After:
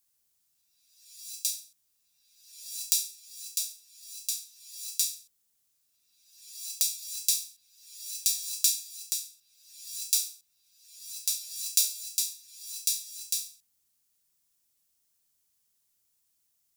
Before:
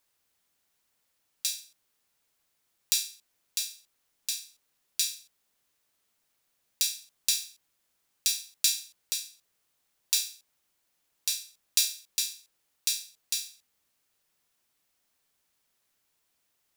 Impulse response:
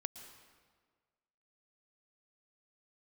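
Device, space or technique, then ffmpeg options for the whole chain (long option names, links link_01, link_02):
reverse reverb: -filter_complex "[0:a]bass=frequency=250:gain=9,treble=frequency=4000:gain=14,areverse[link_01];[1:a]atrim=start_sample=2205[link_02];[link_01][link_02]afir=irnorm=-1:irlink=0,areverse,volume=-8.5dB"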